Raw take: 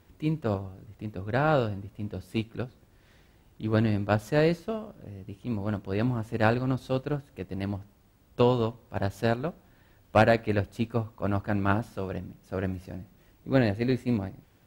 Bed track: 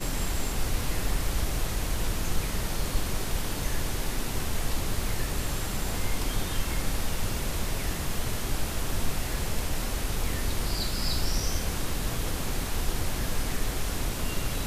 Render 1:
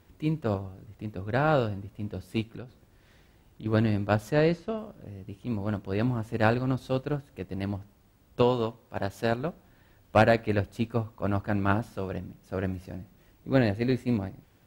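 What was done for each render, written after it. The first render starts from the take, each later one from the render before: 2.57–3.66 s: compression 3:1, threshold -38 dBFS; 4.32–4.78 s: distance through air 54 m; 8.42–9.32 s: bass shelf 150 Hz -7.5 dB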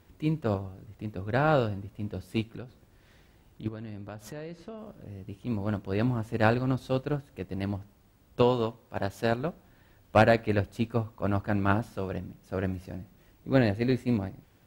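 3.68–5.10 s: compression, threshold -38 dBFS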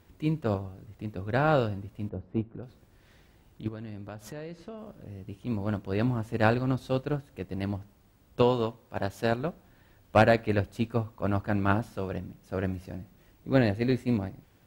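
2.09–2.63 s: low-pass 1 kHz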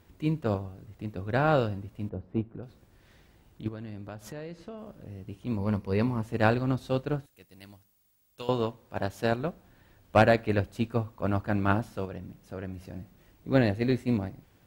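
5.58–6.22 s: rippled EQ curve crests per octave 0.87, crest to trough 8 dB; 7.26–8.49 s: pre-emphasis filter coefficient 0.9; 12.05–12.96 s: compression 2:1, threshold -38 dBFS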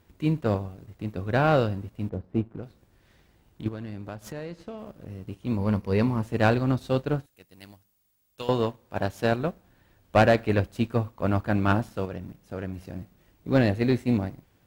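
waveshaping leveller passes 1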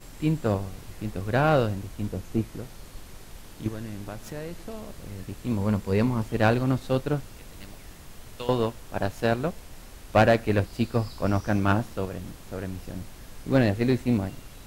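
add bed track -15 dB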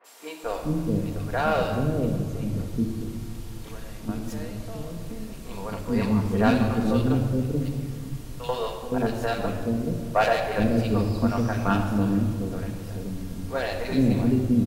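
three bands offset in time mids, highs, lows 40/430 ms, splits 460/1900 Hz; simulated room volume 3800 m³, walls mixed, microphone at 1.7 m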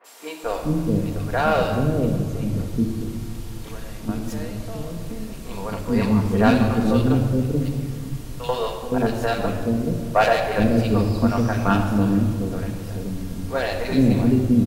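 trim +4 dB

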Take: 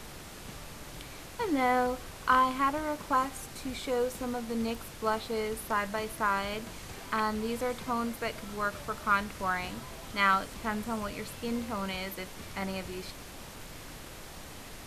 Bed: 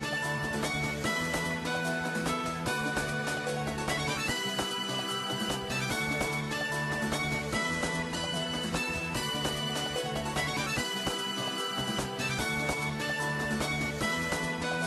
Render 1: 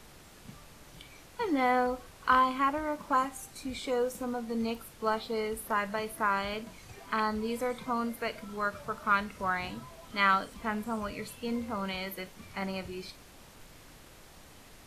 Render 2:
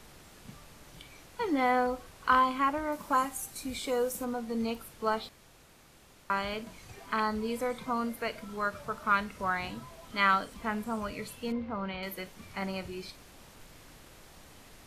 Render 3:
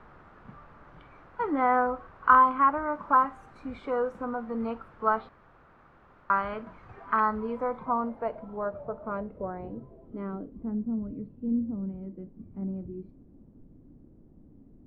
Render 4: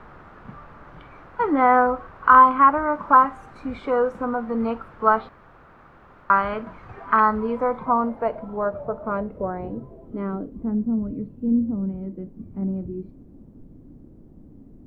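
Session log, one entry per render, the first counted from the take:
noise print and reduce 8 dB
2.92–4.25 s: treble shelf 8.5 kHz +11 dB; 5.29–6.30 s: room tone; 11.52–12.03 s: distance through air 280 m
low-pass sweep 1.3 kHz -> 270 Hz, 7.25–10.90 s
trim +7.5 dB; peak limiter -2 dBFS, peak gain reduction 3 dB

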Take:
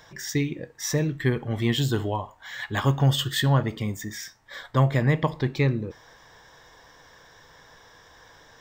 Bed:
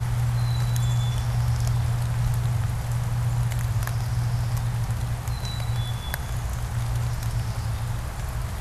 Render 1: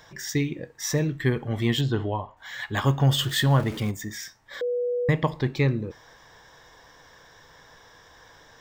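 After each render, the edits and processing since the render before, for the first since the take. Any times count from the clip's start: 1.81–2.37 s: distance through air 200 m; 3.11–3.91 s: jump at every zero crossing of -34.5 dBFS; 4.61–5.09 s: bleep 488 Hz -23 dBFS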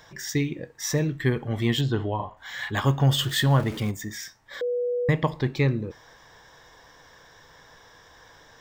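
2.16–2.71 s: doubling 36 ms -2.5 dB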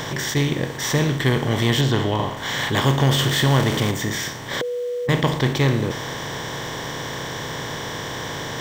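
spectral levelling over time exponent 0.4; attacks held to a fixed rise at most 310 dB/s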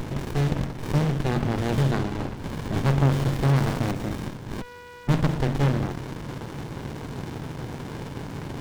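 comb of notches 580 Hz; sliding maximum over 65 samples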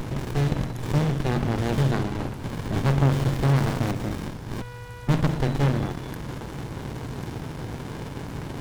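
add bed -14.5 dB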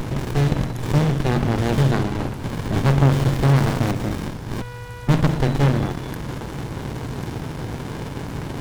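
trim +4.5 dB

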